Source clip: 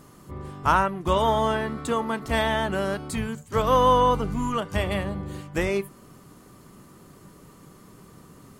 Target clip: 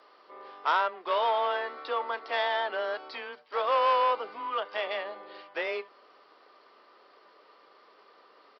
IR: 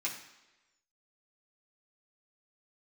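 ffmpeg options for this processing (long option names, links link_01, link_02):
-af "aresample=11025,asoftclip=type=tanh:threshold=-16.5dB,aresample=44100,highpass=frequency=470:width=0.5412,highpass=frequency=470:width=1.3066,afreqshift=15,volume=-1.5dB"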